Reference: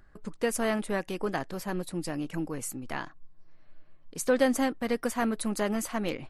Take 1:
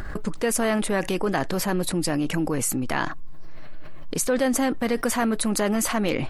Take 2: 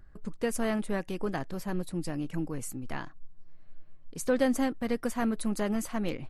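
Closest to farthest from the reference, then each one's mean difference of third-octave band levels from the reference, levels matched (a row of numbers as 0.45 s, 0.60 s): 2, 1; 2.0 dB, 4.0 dB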